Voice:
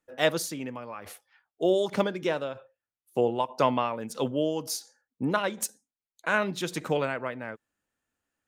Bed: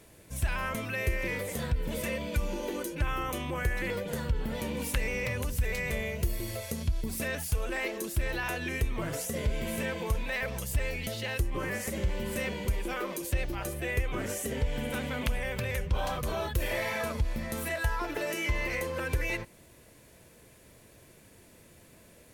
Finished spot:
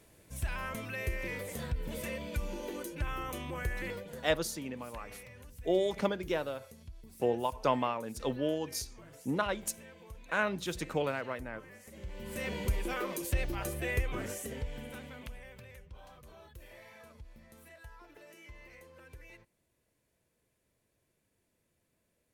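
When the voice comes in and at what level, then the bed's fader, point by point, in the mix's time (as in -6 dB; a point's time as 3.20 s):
4.05 s, -5.0 dB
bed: 3.87 s -5.5 dB
4.40 s -19.5 dB
11.84 s -19.5 dB
12.55 s -1.5 dB
13.95 s -1.5 dB
15.94 s -22 dB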